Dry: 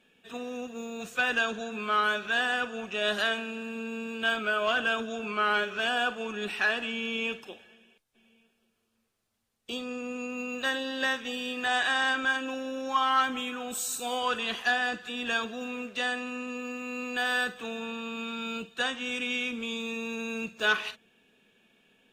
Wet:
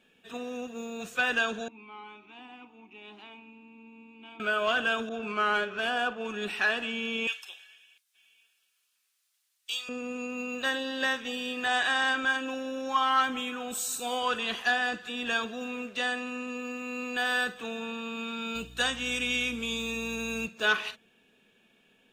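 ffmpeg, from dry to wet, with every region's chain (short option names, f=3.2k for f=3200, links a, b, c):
-filter_complex "[0:a]asettb=1/sr,asplit=3[a][b][c];[a]atrim=end=1.684[d];[b]atrim=start=1.68:end=4.4,asetpts=PTS-STARTPTS,afade=t=in:d=0.004:c=qsin,afade=t=out:st=2.716:d=0.004:c=qsin,bandreject=f=57.43:t=h:w=4,bandreject=f=114.86:t=h:w=4,bandreject=f=172.29:t=h:w=4,bandreject=f=229.72:t=h:w=4,bandreject=f=287.15:t=h:w=4,bandreject=f=344.58:t=h:w=4,bandreject=f=402.01:t=h:w=4,bandreject=f=459.44:t=h:w=4,bandreject=f=516.87:t=h:w=4,bandreject=f=574.3:t=h:w=4,bandreject=f=631.73:t=h:w=4,bandreject=f=689.16:t=h:w=4,bandreject=f=746.59:t=h:w=4,bandreject=f=804.02:t=h:w=4,bandreject=f=861.45:t=h:w=4,bandreject=f=918.88:t=h:w=4,bandreject=f=976.31:t=h:w=4,bandreject=f=1.03374k:t=h:w=4,bandreject=f=1.09117k:t=h:w=4,bandreject=f=1.1486k:t=h:w=4,bandreject=f=1.20603k:t=h:w=4,bandreject=f=1.26346k:t=h:w=4,aeval=exprs='val(0)+0.00126*(sin(2*PI*60*n/s)+sin(2*PI*2*60*n/s)/2+sin(2*PI*3*60*n/s)/3+sin(2*PI*4*60*n/s)/4+sin(2*PI*5*60*n/s)/5)':c=same,asplit=3[e][f][g];[e]bandpass=f=300:t=q:w=8,volume=0dB[h];[f]bandpass=f=870:t=q:w=8,volume=-6dB[i];[g]bandpass=f=2.24k:t=q:w=8,volume=-9dB[j];[h][i][j]amix=inputs=3:normalize=0[k];[c]atrim=start=4.396[l];[d][k]acrossfade=d=0.004:c1=hsin:c2=qsin[m];[m][l]acrossfade=d=0.004:c1=qsin:c2=hsin,asettb=1/sr,asplit=3[n][o][p];[n]atrim=end=5.094[q];[o]atrim=start=5.09:end=6.25,asetpts=PTS-STARTPTS,afade=t=in:d=0.004:c=qsin,afade=t=out:st=1.156:d=0.004:c=qsin,adynamicsmooth=sensitivity=4.5:basefreq=4.1k,adynamicequalizer=threshold=0.0158:dfrequency=1600:dqfactor=0.7:tfrequency=1600:tqfactor=0.7:attack=5:release=100:ratio=0.375:range=2:mode=cutabove:tftype=highshelf[r];[p]atrim=start=6.246[s];[q][r]acrossfade=d=0.004:c1=hsin:c2=qsin[t];[t][s]acrossfade=d=0.004:c1=qsin:c2=hsin,asettb=1/sr,asplit=3[u][v][w];[u]atrim=end=7.274[x];[v]atrim=start=7.27:end=9.89,asetpts=PTS-STARTPTS,afade=t=in:d=0.004:c=qsin,afade=t=out:st=2.616:d=0.004:c=qsin,highpass=1.5k,highshelf=f=2.5k:g=8.5[y];[w]atrim=start=9.886[z];[x][y]acrossfade=d=0.004:c1=hsin:c2=qsin[aa];[aa][z]acrossfade=d=0.004:c1=qsin:c2=hsin,asettb=1/sr,asplit=3[ab][ac][ad];[ab]atrim=end=18.554[ae];[ac]atrim=start=18.55:end=20.47,asetpts=PTS-STARTPTS,afade=t=in:d=0.004:c=qsin,afade=t=out:st=1.916:d=0.004:c=qsin,highshelf=f=5.3k:g=11,aeval=exprs='val(0)+0.00398*(sin(2*PI*60*n/s)+sin(2*PI*2*60*n/s)/2+sin(2*PI*3*60*n/s)/3+sin(2*PI*4*60*n/s)/4+sin(2*PI*5*60*n/s)/5)':c=same[af];[ad]atrim=start=20.466[ag];[ae][af]acrossfade=d=0.004:c1=hsin:c2=qsin[ah];[ah][ag]acrossfade=d=0.004:c1=qsin:c2=hsin"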